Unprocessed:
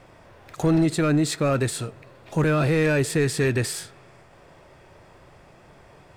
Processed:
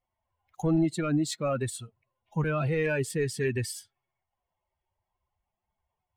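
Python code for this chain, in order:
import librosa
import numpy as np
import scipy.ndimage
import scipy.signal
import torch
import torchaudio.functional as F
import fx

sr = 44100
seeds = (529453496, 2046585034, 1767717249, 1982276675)

y = fx.bin_expand(x, sr, power=2.0)
y = y * 10.0 ** (-3.0 / 20.0)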